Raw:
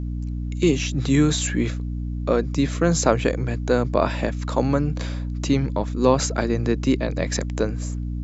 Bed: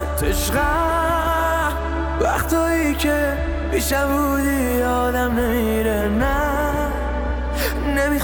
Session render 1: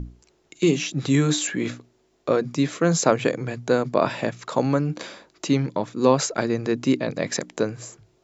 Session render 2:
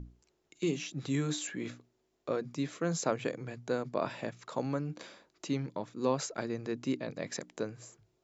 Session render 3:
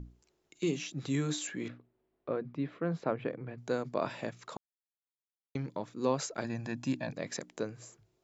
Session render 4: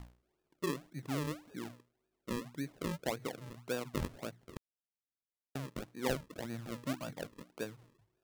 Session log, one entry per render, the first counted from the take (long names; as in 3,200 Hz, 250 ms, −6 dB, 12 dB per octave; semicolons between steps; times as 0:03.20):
mains-hum notches 60/120/180/240/300 Hz
level −12.5 dB
0:01.68–0:03.58: high-frequency loss of the air 430 metres; 0:04.57–0:05.55: silence; 0:06.44–0:07.13: comb filter 1.2 ms, depth 83%
transistor ladder low-pass 1,400 Hz, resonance 20%; sample-and-hold swept by an LFO 41×, swing 100% 1.8 Hz